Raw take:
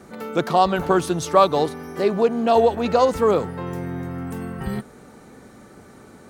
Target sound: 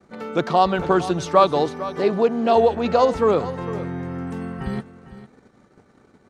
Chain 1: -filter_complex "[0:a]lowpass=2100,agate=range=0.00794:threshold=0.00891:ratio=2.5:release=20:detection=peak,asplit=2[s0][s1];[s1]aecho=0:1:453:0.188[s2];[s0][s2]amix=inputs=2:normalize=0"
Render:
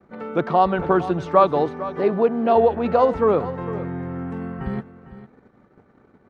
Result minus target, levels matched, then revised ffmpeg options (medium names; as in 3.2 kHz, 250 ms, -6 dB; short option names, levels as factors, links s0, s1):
8 kHz band -16.5 dB
-filter_complex "[0:a]lowpass=5800,agate=range=0.00794:threshold=0.00891:ratio=2.5:release=20:detection=peak,asplit=2[s0][s1];[s1]aecho=0:1:453:0.188[s2];[s0][s2]amix=inputs=2:normalize=0"